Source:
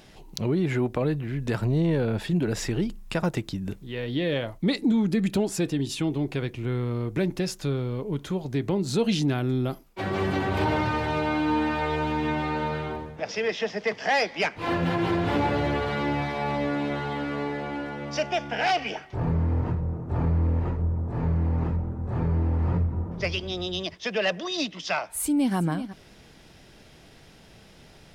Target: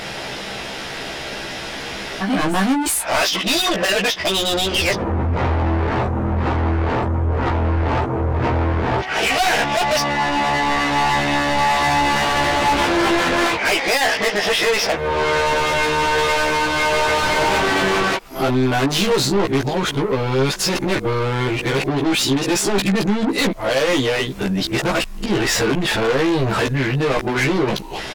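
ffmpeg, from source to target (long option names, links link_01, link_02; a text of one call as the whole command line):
ffmpeg -i in.wav -filter_complex "[0:a]areverse,asplit=2[link_01][link_02];[link_02]acompressor=threshold=-35dB:ratio=6,volume=-2dB[link_03];[link_01][link_03]amix=inputs=2:normalize=0,asplit=2[link_04][link_05];[link_05]highpass=frequency=720:poles=1,volume=20dB,asoftclip=type=tanh:threshold=-10.5dB[link_06];[link_04][link_06]amix=inputs=2:normalize=0,lowpass=frequency=3700:poles=1,volume=-6dB,asubboost=boost=2.5:cutoff=73,asoftclip=type=tanh:threshold=-25dB,asplit=2[link_07][link_08];[link_08]adelay=15,volume=-2.5dB[link_09];[link_07][link_09]amix=inputs=2:normalize=0,volume=7.5dB" out.wav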